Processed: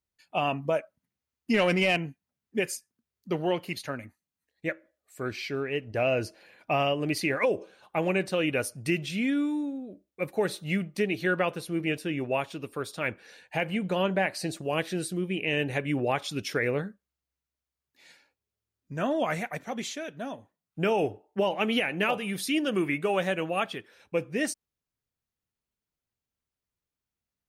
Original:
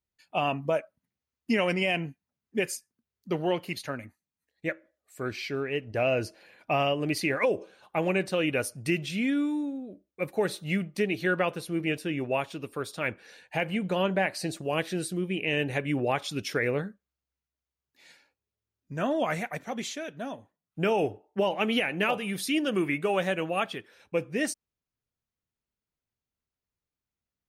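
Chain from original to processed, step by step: 1.54–1.97 s: waveshaping leveller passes 1

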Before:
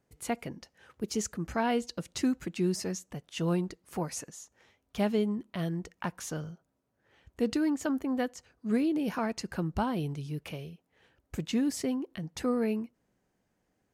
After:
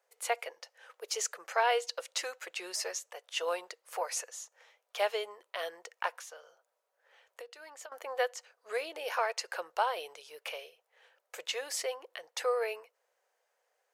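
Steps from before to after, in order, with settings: elliptic high-pass 490 Hz, stop band 50 dB; dynamic bell 2.7 kHz, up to +3 dB, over -53 dBFS, Q 0.7; 6.14–7.92 s: compression 20:1, threshold -48 dBFS, peak gain reduction 20.5 dB; trim +3 dB

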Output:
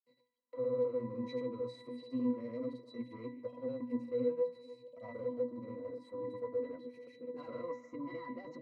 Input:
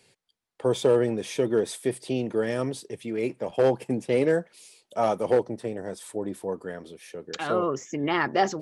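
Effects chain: hum notches 60/120/180/240/300 Hz; in parallel at +2 dB: compression, threshold -34 dBFS, peak gain reduction 16.5 dB; on the sum: peak limiter -18.5 dBFS, peak gain reduction 10 dB; brick-wall FIR high-pass 160 Hz; hard clipper -25 dBFS, distortion -12 dB; granulator, grains 20 per s, pitch spread up and down by 0 st; pitch-class resonator B, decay 0.28 s; on a send: repeats whose band climbs or falls 147 ms, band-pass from 2.5 kHz, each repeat -1.4 oct, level -11.5 dB; on the sum: trim +6 dB

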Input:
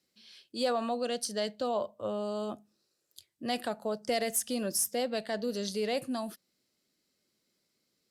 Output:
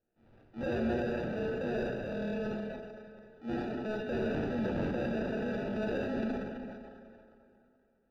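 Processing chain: sample-and-hold 41×; plate-style reverb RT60 2.9 s, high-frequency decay 0.75×, DRR -1 dB; dynamic bell 190 Hz, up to +6 dB, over -44 dBFS, Q 0.76; transient shaper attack -5 dB, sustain +7 dB; distance through air 290 m; trim -6.5 dB

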